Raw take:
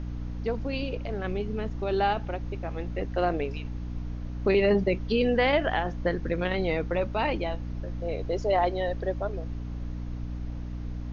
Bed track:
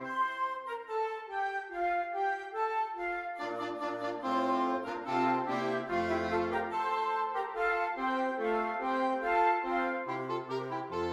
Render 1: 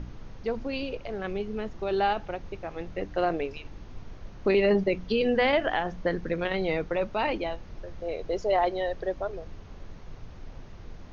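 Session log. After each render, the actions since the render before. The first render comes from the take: de-hum 60 Hz, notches 5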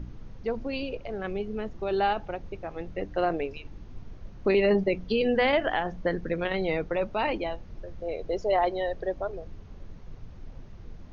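noise reduction 6 dB, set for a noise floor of -45 dBFS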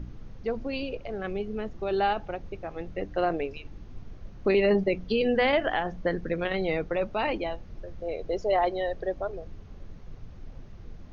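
band-stop 940 Hz, Q 19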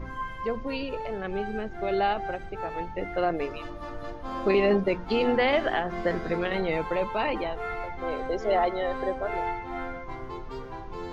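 add bed track -3.5 dB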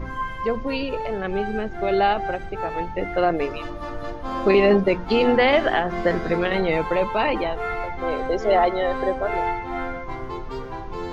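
trim +6 dB

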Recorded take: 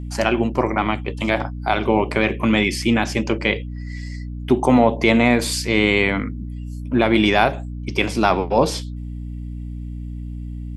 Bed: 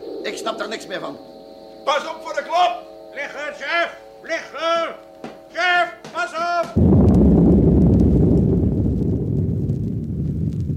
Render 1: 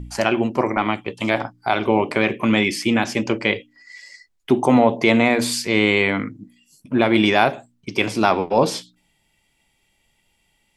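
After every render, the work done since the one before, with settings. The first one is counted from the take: de-hum 60 Hz, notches 5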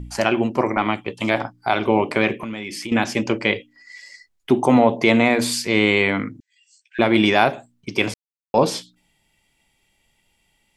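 2.38–2.92 s: compression, threshold -27 dBFS; 6.40–6.99 s: brick-wall FIR band-pass 1.5–8.5 kHz; 8.14–8.54 s: mute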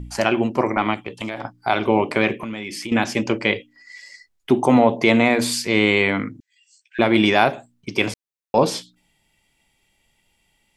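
0.94–1.45 s: compression, threshold -24 dBFS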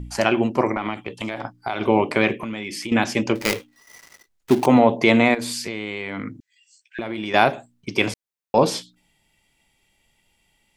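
0.75–1.81 s: compression 5:1, threshold -21 dBFS; 3.35–4.66 s: dead-time distortion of 0.17 ms; 5.34–7.34 s: compression 12:1, threshold -24 dBFS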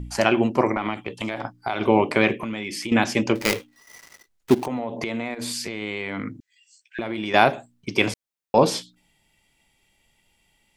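4.54–5.82 s: compression, threshold -25 dBFS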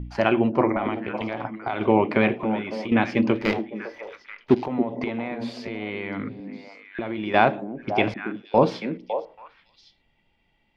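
distance through air 290 m; repeats whose band climbs or falls 278 ms, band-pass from 250 Hz, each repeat 1.4 oct, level -4.5 dB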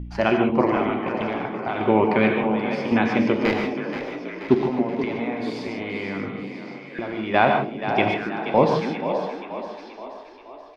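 frequency-shifting echo 479 ms, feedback 54%, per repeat +32 Hz, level -10 dB; gated-style reverb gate 170 ms rising, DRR 3.5 dB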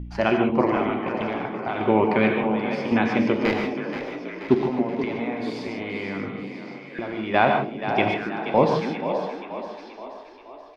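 trim -1 dB

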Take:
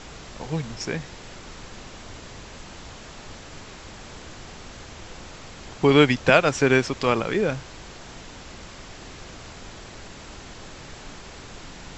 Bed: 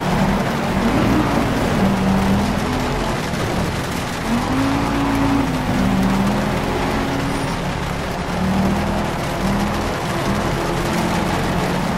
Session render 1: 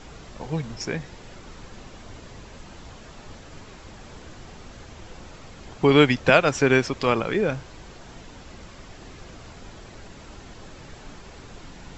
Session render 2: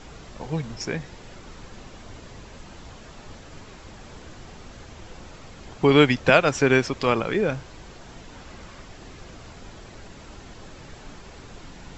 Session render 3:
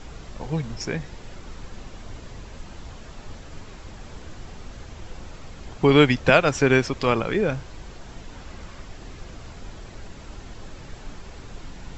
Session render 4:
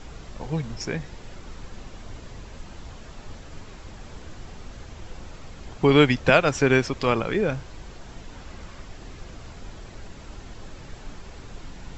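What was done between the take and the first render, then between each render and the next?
noise reduction 6 dB, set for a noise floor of -42 dBFS
8.31–8.83 s: peaking EQ 1.3 kHz +3 dB 1.8 oct
bass shelf 80 Hz +8 dB
trim -1 dB

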